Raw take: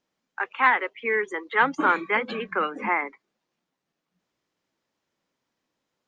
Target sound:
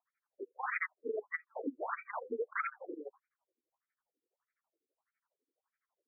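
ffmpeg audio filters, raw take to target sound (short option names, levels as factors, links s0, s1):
-af "tremolo=f=12:d=0.95,aeval=exprs='(mod(12.6*val(0)+1,2)-1)/12.6':c=same,afftfilt=real='re*between(b*sr/1024,340*pow(1800/340,0.5+0.5*sin(2*PI*1.6*pts/sr))/1.41,340*pow(1800/340,0.5+0.5*sin(2*PI*1.6*pts/sr))*1.41)':imag='im*between(b*sr/1024,340*pow(1800/340,0.5+0.5*sin(2*PI*1.6*pts/sr))/1.41,340*pow(1800/340,0.5+0.5*sin(2*PI*1.6*pts/sr))*1.41)':win_size=1024:overlap=0.75,volume=1.12"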